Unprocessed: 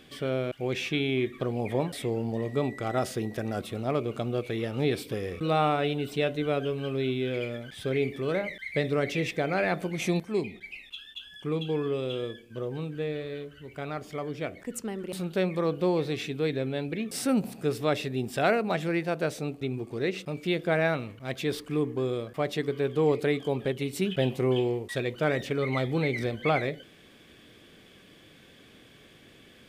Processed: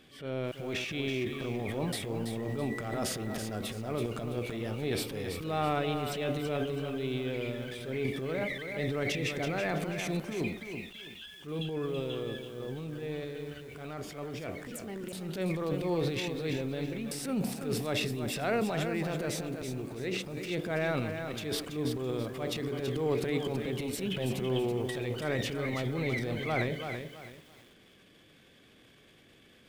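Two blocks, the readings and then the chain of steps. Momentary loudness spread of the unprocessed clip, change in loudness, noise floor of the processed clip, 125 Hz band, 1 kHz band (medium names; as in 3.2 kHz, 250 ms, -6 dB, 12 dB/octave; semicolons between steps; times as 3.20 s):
9 LU, -4.5 dB, -59 dBFS, -3.0 dB, -5.5 dB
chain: transient shaper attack -8 dB, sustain +10 dB; bit-crushed delay 330 ms, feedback 35%, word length 8-bit, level -7 dB; trim -5.5 dB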